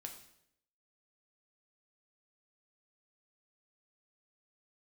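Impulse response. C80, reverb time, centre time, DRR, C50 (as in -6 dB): 11.0 dB, 0.75 s, 19 ms, 3.0 dB, 8.5 dB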